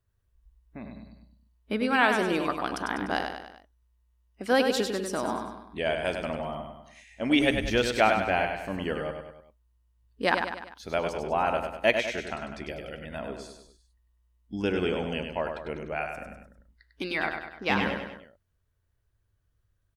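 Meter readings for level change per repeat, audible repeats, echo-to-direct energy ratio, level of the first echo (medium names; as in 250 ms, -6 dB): -6.0 dB, 4, -5.0 dB, -6.0 dB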